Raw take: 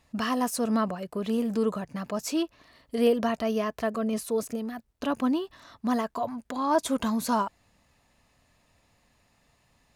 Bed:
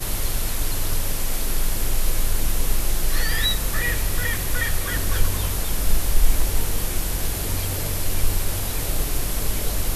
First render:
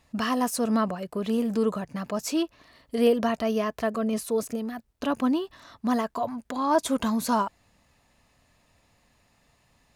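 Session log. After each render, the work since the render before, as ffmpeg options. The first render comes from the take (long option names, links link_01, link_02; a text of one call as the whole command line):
ffmpeg -i in.wav -af "volume=1.5dB" out.wav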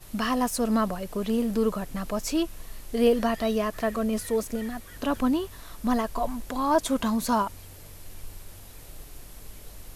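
ffmpeg -i in.wav -i bed.wav -filter_complex "[1:a]volume=-20.5dB[link_01];[0:a][link_01]amix=inputs=2:normalize=0" out.wav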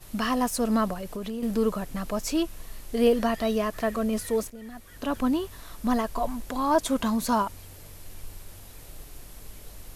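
ffmpeg -i in.wav -filter_complex "[0:a]asettb=1/sr,asplit=3[link_01][link_02][link_03];[link_01]atrim=end=0.934[link_04];[link_02]atrim=start=0.93:end=1.43,asetpts=PTS-STARTPTS,afade=type=in:duration=0.004:curve=qsin,afade=type=out:start_time=0.496:duration=0.004:curve=qsin,acompressor=threshold=-30dB:ratio=5:attack=3.2:release=140:knee=1:detection=peak[link_05];[link_03]atrim=start=1.426[link_06];[link_04][link_05]acrossfade=duration=0.004:curve1=hsin:curve2=qsin[link_07];[link_07][link_06]acrossfade=duration=0.004:curve1=qsin:curve2=hsin,asplit=2[link_08][link_09];[link_08]atrim=end=4.5,asetpts=PTS-STARTPTS,afade=type=out:start_time=4.496:duration=0.004:curve=hsin:silence=0.158489[link_10];[link_09]atrim=start=4.5,asetpts=PTS-STARTPTS,afade=type=in:duration=1.09:curve=qsin:silence=0.158489[link_11];[link_10][link_11]concat=n=2:v=0:a=1" out.wav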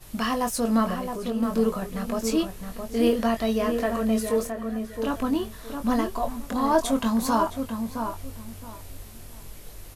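ffmpeg -i in.wav -filter_complex "[0:a]asplit=2[link_01][link_02];[link_02]adelay=22,volume=-6.5dB[link_03];[link_01][link_03]amix=inputs=2:normalize=0,asplit=2[link_04][link_05];[link_05]adelay=667,lowpass=frequency=1700:poles=1,volume=-6dB,asplit=2[link_06][link_07];[link_07]adelay=667,lowpass=frequency=1700:poles=1,volume=0.24,asplit=2[link_08][link_09];[link_09]adelay=667,lowpass=frequency=1700:poles=1,volume=0.24[link_10];[link_04][link_06][link_08][link_10]amix=inputs=4:normalize=0" out.wav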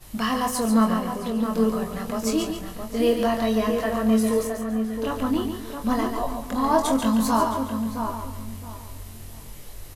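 ffmpeg -i in.wav -filter_complex "[0:a]asplit=2[link_01][link_02];[link_02]adelay=23,volume=-6.5dB[link_03];[link_01][link_03]amix=inputs=2:normalize=0,aecho=1:1:141|282|423|564:0.447|0.143|0.0457|0.0146" out.wav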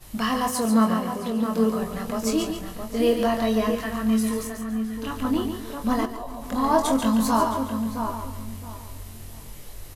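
ffmpeg -i in.wav -filter_complex "[0:a]asettb=1/sr,asplit=3[link_01][link_02][link_03];[link_01]atrim=end=0.504[link_04];[link_02]atrim=start=0.5:end=1.8,asetpts=PTS-STARTPTS,afade=type=in:duration=0.004:curve=qsin,afade=type=out:start_time=1.296:duration=0.004:curve=qsin,highpass=69[link_05];[link_03]atrim=start=1.796[link_06];[link_04][link_05]acrossfade=duration=0.004:curve1=hsin:curve2=qsin[link_07];[link_07][link_06]acrossfade=duration=0.004:curve1=qsin:curve2=hsin,asettb=1/sr,asplit=3[link_08][link_09][link_10];[link_08]atrim=end=3.754[link_11];[link_09]atrim=start=3.75:end=5.25,asetpts=PTS-STARTPTS,afade=type=in:duration=0.004:curve=qsin,afade=type=out:start_time=1.496:duration=0.004:curve=qsin,equalizer=frequency=550:width=1.5:gain=-12.5[link_12];[link_10]atrim=start=5.246[link_13];[link_11][link_12]acrossfade=duration=0.004:curve1=hsin:curve2=qsin[link_14];[link_14][link_13]acrossfade=duration=0.004:curve1=qsin:curve2=hsin,asettb=1/sr,asplit=3[link_15][link_16][link_17];[link_15]atrim=end=6.054[link_18];[link_16]atrim=start=6.05:end=6.52,asetpts=PTS-STARTPTS,afade=type=in:duration=0.004:curve=qsin,afade=type=out:start_time=0.466:duration=0.004:curve=qsin,acompressor=threshold=-30dB:ratio=6:attack=3.2:release=140:knee=1:detection=peak[link_19];[link_17]atrim=start=6.516[link_20];[link_18][link_19]acrossfade=duration=0.004:curve1=hsin:curve2=qsin[link_21];[link_21][link_20]acrossfade=duration=0.004:curve1=qsin:curve2=hsin" out.wav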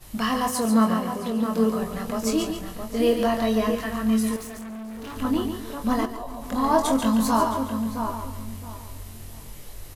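ffmpeg -i in.wav -filter_complex "[0:a]asettb=1/sr,asplit=3[link_01][link_02][link_03];[link_01]atrim=end=4.364[link_04];[link_02]atrim=start=4.36:end=5.16,asetpts=PTS-STARTPTS,afade=type=in:duration=0.004:curve=qsin,afade=type=out:start_time=0.796:duration=0.004:curve=qsin,volume=34.5dB,asoftclip=hard,volume=-34.5dB[link_05];[link_03]atrim=start=5.156[link_06];[link_04][link_05]acrossfade=duration=0.004:curve1=hsin:curve2=qsin[link_07];[link_07][link_06]acrossfade=duration=0.004:curve1=qsin:curve2=hsin" out.wav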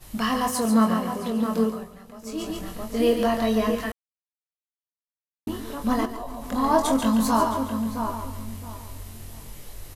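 ffmpeg -i in.wav -filter_complex "[0:a]asplit=5[link_01][link_02][link_03][link_04][link_05];[link_01]atrim=end=2.02,asetpts=PTS-STARTPTS,afade=type=out:start_time=1.59:duration=0.43:curve=qua:silence=0.16788[link_06];[link_02]atrim=start=2.02:end=2.14,asetpts=PTS-STARTPTS,volume=-15.5dB[link_07];[link_03]atrim=start=2.14:end=3.92,asetpts=PTS-STARTPTS,afade=type=in:duration=0.43:curve=qua:silence=0.16788,afade=type=out:start_time=1.776:duration=0.004:curve=hsin[link_08];[link_04]atrim=start=3.92:end=5.47,asetpts=PTS-STARTPTS,volume=0[link_09];[link_05]atrim=start=5.47,asetpts=PTS-STARTPTS,afade=type=in:duration=0.004:curve=hsin[link_10];[link_06][link_07][link_08][link_09][link_10]concat=n=5:v=0:a=1" out.wav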